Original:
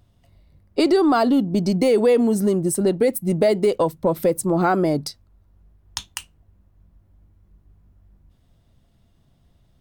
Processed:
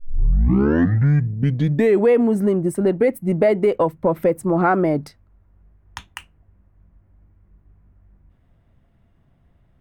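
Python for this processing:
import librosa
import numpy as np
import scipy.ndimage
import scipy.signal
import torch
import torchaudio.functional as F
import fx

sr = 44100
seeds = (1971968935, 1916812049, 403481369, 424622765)

y = fx.tape_start_head(x, sr, length_s=2.13)
y = fx.high_shelf_res(y, sr, hz=3000.0, db=-12.0, q=1.5)
y = F.gain(torch.from_numpy(y), 1.0).numpy()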